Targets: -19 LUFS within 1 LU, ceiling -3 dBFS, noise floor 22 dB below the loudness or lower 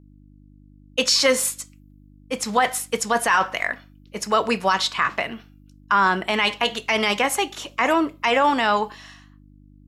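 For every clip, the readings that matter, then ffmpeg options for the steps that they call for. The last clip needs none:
hum 50 Hz; harmonics up to 300 Hz; hum level -48 dBFS; loudness -21.0 LUFS; peak -8.0 dBFS; loudness target -19.0 LUFS
-> -af "bandreject=f=50:t=h:w=4,bandreject=f=100:t=h:w=4,bandreject=f=150:t=h:w=4,bandreject=f=200:t=h:w=4,bandreject=f=250:t=h:w=4,bandreject=f=300:t=h:w=4"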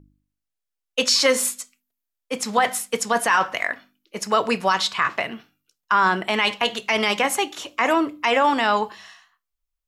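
hum none; loudness -21.0 LUFS; peak -7.5 dBFS; loudness target -19.0 LUFS
-> -af "volume=2dB"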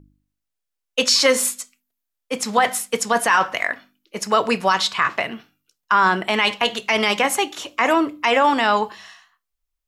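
loudness -19.0 LUFS; peak -5.5 dBFS; noise floor -81 dBFS

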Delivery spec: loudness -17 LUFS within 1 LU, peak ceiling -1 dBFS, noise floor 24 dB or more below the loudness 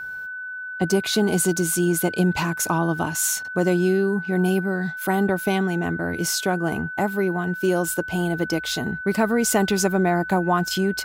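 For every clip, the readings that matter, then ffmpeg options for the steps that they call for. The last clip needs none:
steady tone 1500 Hz; tone level -30 dBFS; loudness -22.5 LUFS; peak -7.5 dBFS; loudness target -17.0 LUFS
-> -af "bandreject=f=1.5k:w=30"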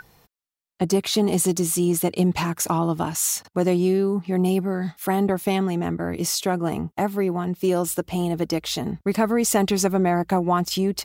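steady tone none; loudness -22.5 LUFS; peak -7.5 dBFS; loudness target -17.0 LUFS
-> -af "volume=5.5dB"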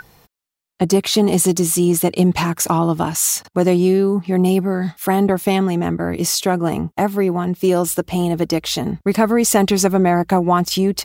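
loudness -17.0 LUFS; peak -2.0 dBFS; noise floor -80 dBFS

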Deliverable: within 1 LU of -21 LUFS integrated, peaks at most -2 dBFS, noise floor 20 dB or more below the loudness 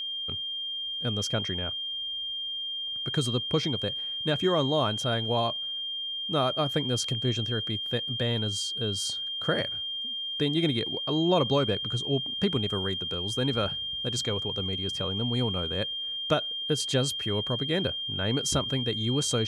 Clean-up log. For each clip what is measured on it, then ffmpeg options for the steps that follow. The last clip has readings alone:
steady tone 3200 Hz; tone level -31 dBFS; loudness -28.0 LUFS; peak -12.5 dBFS; loudness target -21.0 LUFS
-> -af "bandreject=f=3.2k:w=30"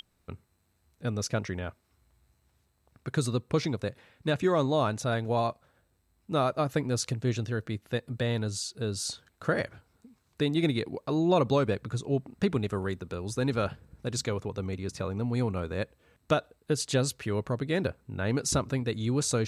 steady tone none; loudness -30.5 LUFS; peak -13.5 dBFS; loudness target -21.0 LUFS
-> -af "volume=9.5dB"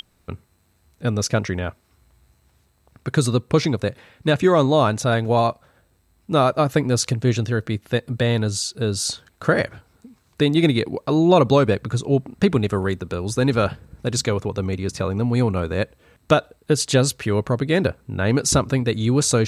loudness -21.0 LUFS; peak -4.0 dBFS; noise floor -62 dBFS

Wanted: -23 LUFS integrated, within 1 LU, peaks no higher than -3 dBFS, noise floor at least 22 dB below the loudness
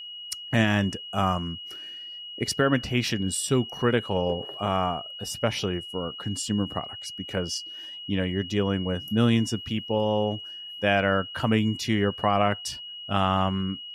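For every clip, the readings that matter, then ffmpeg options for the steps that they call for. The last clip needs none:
steady tone 2900 Hz; tone level -37 dBFS; loudness -26.5 LUFS; peak -9.5 dBFS; loudness target -23.0 LUFS
-> -af "bandreject=f=2.9k:w=30"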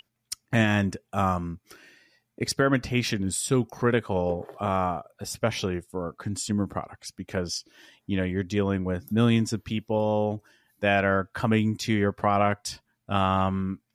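steady tone none; loudness -26.5 LUFS; peak -9.5 dBFS; loudness target -23.0 LUFS
-> -af "volume=3.5dB"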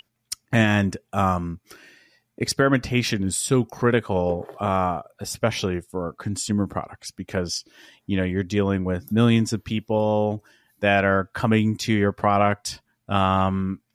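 loudness -23.0 LUFS; peak -6.0 dBFS; noise floor -74 dBFS

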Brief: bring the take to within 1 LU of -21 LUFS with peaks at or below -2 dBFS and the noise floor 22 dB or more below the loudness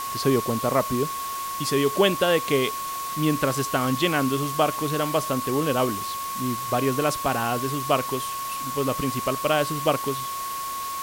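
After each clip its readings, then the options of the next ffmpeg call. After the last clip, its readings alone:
steady tone 1100 Hz; tone level -29 dBFS; noise floor -31 dBFS; noise floor target -47 dBFS; loudness -24.5 LUFS; peak -6.5 dBFS; loudness target -21.0 LUFS
-> -af "bandreject=f=1.1k:w=30"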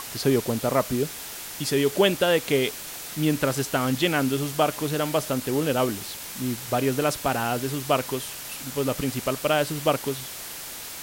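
steady tone none; noise floor -37 dBFS; noise floor target -48 dBFS
-> -af "afftdn=nr=11:nf=-37"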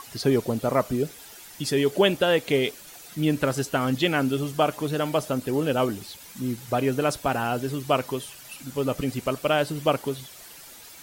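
noise floor -46 dBFS; noise floor target -48 dBFS
-> -af "afftdn=nr=6:nf=-46"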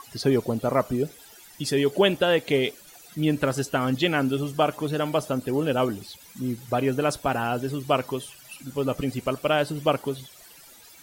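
noise floor -50 dBFS; loudness -25.5 LUFS; peak -7.5 dBFS; loudness target -21.0 LUFS
-> -af "volume=4.5dB"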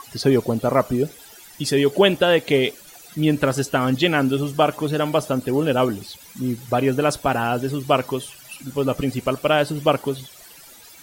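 loudness -21.0 LUFS; peak -3.0 dBFS; noise floor -45 dBFS

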